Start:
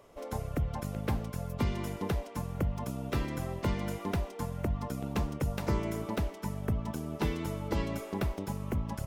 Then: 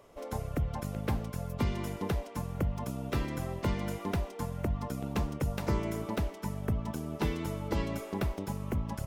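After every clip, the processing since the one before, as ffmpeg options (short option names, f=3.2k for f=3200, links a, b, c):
-af anull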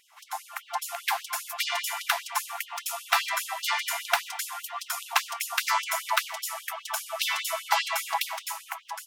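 -af "dynaudnorm=f=170:g=9:m=10dB,afftfilt=real='re*gte(b*sr/1024,620*pow(2900/620,0.5+0.5*sin(2*PI*5*pts/sr)))':imag='im*gte(b*sr/1024,620*pow(2900/620,0.5+0.5*sin(2*PI*5*pts/sr)))':win_size=1024:overlap=0.75,volume=7.5dB"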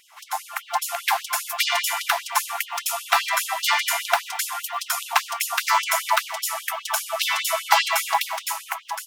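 -filter_complex "[0:a]acrossover=split=1200[a][b];[a]acrusher=bits=5:mode=log:mix=0:aa=0.000001[c];[b]alimiter=limit=-14.5dB:level=0:latency=1:release=286[d];[c][d]amix=inputs=2:normalize=0,volume=7dB"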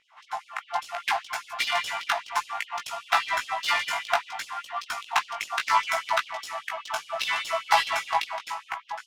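-af "adynamicsmooth=sensitivity=1.5:basefreq=2.8k,flanger=delay=16.5:depth=2.1:speed=0.66"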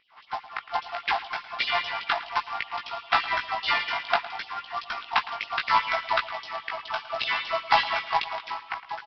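-af "aresample=11025,acrusher=bits=3:mode=log:mix=0:aa=0.000001,aresample=44100,aecho=1:1:110:0.158"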